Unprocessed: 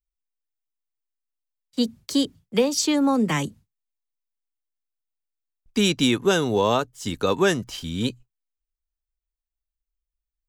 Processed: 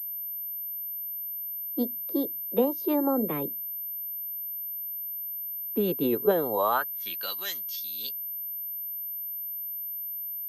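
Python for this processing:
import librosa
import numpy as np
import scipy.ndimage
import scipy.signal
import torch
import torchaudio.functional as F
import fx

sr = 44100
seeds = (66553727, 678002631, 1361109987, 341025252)

y = fx.filter_sweep_bandpass(x, sr, from_hz=400.0, to_hz=5000.0, start_s=6.3, end_s=7.46, q=1.6)
y = fx.formant_shift(y, sr, semitones=2)
y = fx.pwm(y, sr, carrier_hz=13000.0)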